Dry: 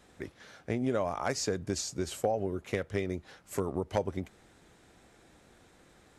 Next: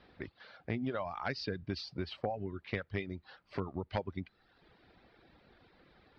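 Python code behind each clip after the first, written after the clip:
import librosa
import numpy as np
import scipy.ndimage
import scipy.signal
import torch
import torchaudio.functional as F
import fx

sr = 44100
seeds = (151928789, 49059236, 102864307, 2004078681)

y = fx.dynamic_eq(x, sr, hz=490.0, q=0.95, threshold_db=-44.0, ratio=4.0, max_db=-7)
y = scipy.signal.sosfilt(scipy.signal.ellip(4, 1.0, 40, 4700.0, 'lowpass', fs=sr, output='sos'), y)
y = fx.dereverb_blind(y, sr, rt60_s=0.9)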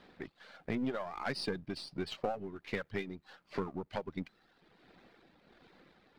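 y = np.where(x < 0.0, 10.0 ** (-7.0 / 20.0) * x, x)
y = fx.low_shelf_res(y, sr, hz=130.0, db=-6.5, q=1.5)
y = y * (1.0 - 0.41 / 2.0 + 0.41 / 2.0 * np.cos(2.0 * np.pi * 1.4 * (np.arange(len(y)) / sr)))
y = y * librosa.db_to_amplitude(5.0)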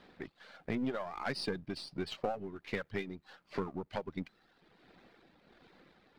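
y = x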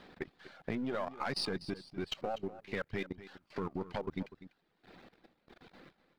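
y = fx.level_steps(x, sr, step_db=21)
y = y + 10.0 ** (-15.0 / 20.0) * np.pad(y, (int(246 * sr / 1000.0), 0))[:len(y)]
y = y * librosa.db_to_amplitude(6.5)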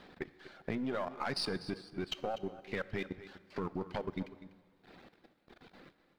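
y = fx.rev_plate(x, sr, seeds[0], rt60_s=2.0, hf_ratio=0.75, predelay_ms=0, drr_db=16.0)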